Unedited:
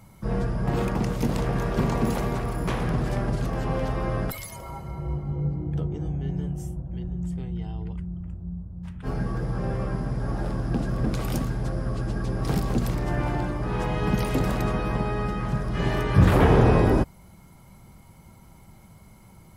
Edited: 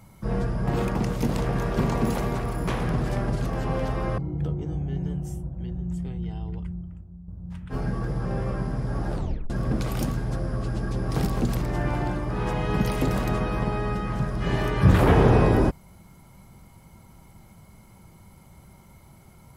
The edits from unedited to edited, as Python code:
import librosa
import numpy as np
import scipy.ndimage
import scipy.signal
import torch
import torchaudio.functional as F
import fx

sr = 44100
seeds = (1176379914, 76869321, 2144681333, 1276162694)

y = fx.edit(x, sr, fx.cut(start_s=4.18, length_s=1.33),
    fx.fade_out_to(start_s=8.06, length_s=0.55, curve='qua', floor_db=-10.5),
    fx.tape_stop(start_s=10.46, length_s=0.37), tone=tone)